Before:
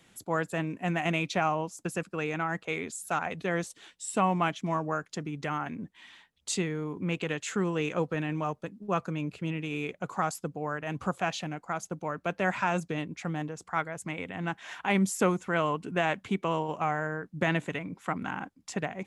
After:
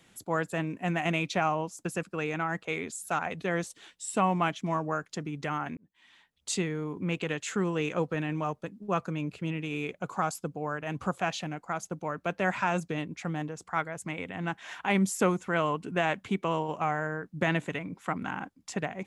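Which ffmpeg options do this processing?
-filter_complex "[0:a]asettb=1/sr,asplit=3[a][b][c];[a]atrim=end=9.924[d];[b]atrim=start=9.92:end=10.86,asetpts=PTS-STARTPTS,afade=t=in:d=0.004:c=qsin,afade=t=out:st=0.936:d=0.004:c=qsin,bandreject=f=1.9k:w=12[e];[c]atrim=start=10.856[f];[d][e]acrossfade=d=0.004:c1=hsin:c2=qsin[g];[g][f]acrossfade=d=0.004:c1=qsin:c2=hsin,asplit=2[h][i];[h]atrim=end=5.77,asetpts=PTS-STARTPTS,afade=t=out:st=5.766:d=0.004:c=hsin[j];[i]atrim=start=5.77,asetpts=PTS-STARTPTS,afade=t=in:d=0.76[k];[j][k]concat=n=2:v=0:a=1"

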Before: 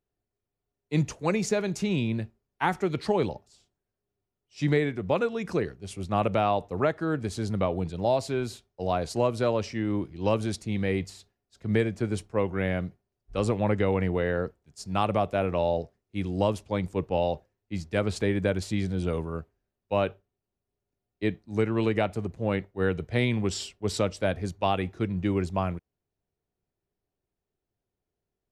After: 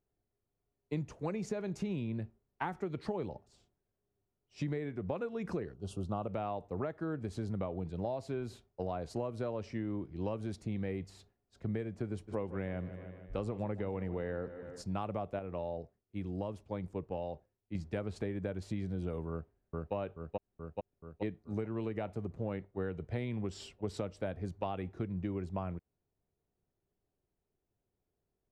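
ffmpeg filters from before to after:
-filter_complex "[0:a]asplit=3[a][b][c];[a]afade=t=out:st=5.73:d=0.02[d];[b]asuperstop=centerf=2000:order=8:qfactor=1.6,afade=t=in:st=5.73:d=0.02,afade=t=out:st=6.26:d=0.02[e];[c]afade=t=in:st=6.26:d=0.02[f];[d][e][f]amix=inputs=3:normalize=0,asplit=3[g][h][i];[g]afade=t=out:st=12.27:d=0.02[j];[h]aecho=1:1:152|304|456|608|760:0.15|0.0838|0.0469|0.0263|0.0147,afade=t=in:st=12.27:d=0.02,afade=t=out:st=14.81:d=0.02[k];[i]afade=t=in:st=14.81:d=0.02[l];[j][k][l]amix=inputs=3:normalize=0,asplit=2[m][n];[n]afade=t=in:st=19.3:d=0.01,afade=t=out:st=19.94:d=0.01,aecho=0:1:430|860|1290|1720|2150|2580|3010|3440|3870:0.707946|0.424767|0.25486|0.152916|0.0917498|0.0550499|0.0330299|0.019818|0.0118908[o];[m][o]amix=inputs=2:normalize=0,asplit=3[p][q][r];[p]atrim=end=15.392[s];[q]atrim=start=15.388:end=17.752,asetpts=PTS-STARTPTS,volume=-7dB[t];[r]atrim=start=17.748[u];[s][t]acrossfade=d=0.004:c1=hsin:c2=hsin[v];[v][u]acrossfade=d=0.004:c1=hsin:c2=hsin,highshelf=f=2.1k:g=-11.5,acompressor=threshold=-35dB:ratio=6,volume=1dB"

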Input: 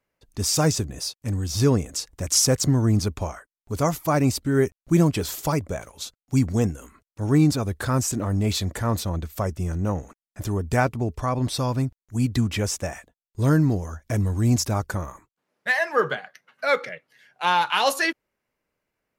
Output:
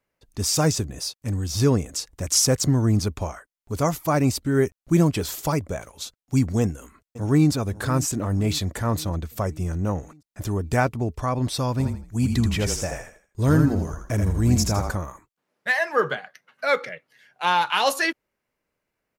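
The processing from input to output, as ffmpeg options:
-filter_complex "[0:a]asplit=2[a][b];[b]afade=t=in:st=6.61:d=0.01,afade=t=out:st=7.52:d=0.01,aecho=0:1:540|1080|1620|2160|2700|3240:0.149624|0.0897741|0.0538645|0.0323187|0.0193912|0.0116347[c];[a][c]amix=inputs=2:normalize=0,asplit=3[d][e][f];[d]afade=t=out:st=11.79:d=0.02[g];[e]asplit=5[h][i][j][k][l];[i]adelay=81,afreqshift=-31,volume=-5dB[m];[j]adelay=162,afreqshift=-62,volume=-14.9dB[n];[k]adelay=243,afreqshift=-93,volume=-24.8dB[o];[l]adelay=324,afreqshift=-124,volume=-34.7dB[p];[h][m][n][o][p]amix=inputs=5:normalize=0,afade=t=in:st=11.79:d=0.02,afade=t=out:st=14.95:d=0.02[q];[f]afade=t=in:st=14.95:d=0.02[r];[g][q][r]amix=inputs=3:normalize=0"

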